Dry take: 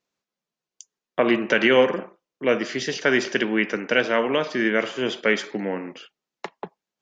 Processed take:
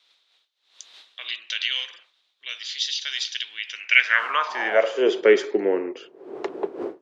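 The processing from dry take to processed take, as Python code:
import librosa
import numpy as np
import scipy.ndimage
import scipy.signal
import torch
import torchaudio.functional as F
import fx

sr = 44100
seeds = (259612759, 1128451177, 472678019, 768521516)

y = fx.dmg_wind(x, sr, seeds[0], corner_hz=470.0, level_db=-37.0)
y = fx.filter_sweep_highpass(y, sr, from_hz=3700.0, to_hz=380.0, start_s=3.63, end_s=5.12, q=5.5)
y = y * 10.0 ** (-2.0 / 20.0)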